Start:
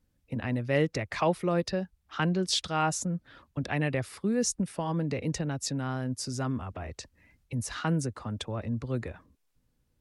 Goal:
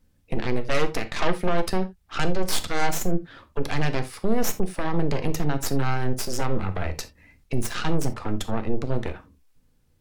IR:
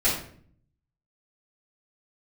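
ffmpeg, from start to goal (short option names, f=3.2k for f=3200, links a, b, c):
-filter_complex "[0:a]aeval=exprs='0.2*(cos(1*acos(clip(val(0)/0.2,-1,1)))-cos(1*PI/2))+0.0794*(cos(6*acos(clip(val(0)/0.2,-1,1)))-cos(6*PI/2))':c=same,alimiter=limit=-21dB:level=0:latency=1:release=210,asplit=2[a][b];[1:a]atrim=start_sample=2205,atrim=end_sample=3969[c];[b][c]afir=irnorm=-1:irlink=0,volume=-19.5dB[d];[a][d]amix=inputs=2:normalize=0,volume=6dB"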